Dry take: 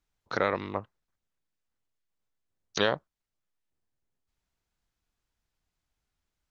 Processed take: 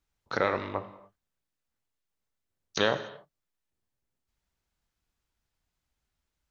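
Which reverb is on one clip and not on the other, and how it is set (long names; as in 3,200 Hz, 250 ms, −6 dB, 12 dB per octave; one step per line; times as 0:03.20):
reverb whose tail is shaped and stops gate 320 ms falling, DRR 8.5 dB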